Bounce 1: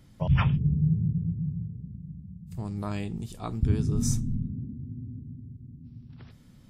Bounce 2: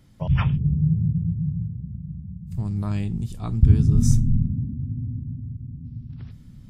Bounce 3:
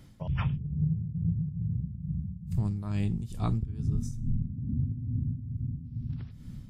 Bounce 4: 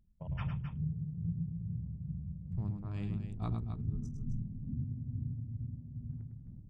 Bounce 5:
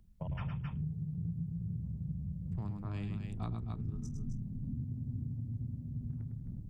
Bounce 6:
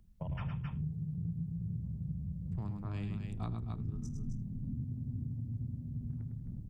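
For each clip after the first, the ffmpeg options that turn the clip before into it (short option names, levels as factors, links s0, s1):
-af "asubboost=boost=4:cutoff=230"
-af "acompressor=threshold=0.0501:ratio=16,tremolo=f=2.3:d=0.65,volume=1.41"
-af "anlmdn=0.251,aecho=1:1:105|262.4:0.447|0.355,volume=0.398"
-filter_complex "[0:a]acrossover=split=200|840[s0][s1][s2];[s0]acompressor=threshold=0.00501:ratio=4[s3];[s1]acompressor=threshold=0.002:ratio=4[s4];[s2]acompressor=threshold=0.00126:ratio=4[s5];[s3][s4][s5]amix=inputs=3:normalize=0,volume=2.37"
-af "aecho=1:1:80:0.0944"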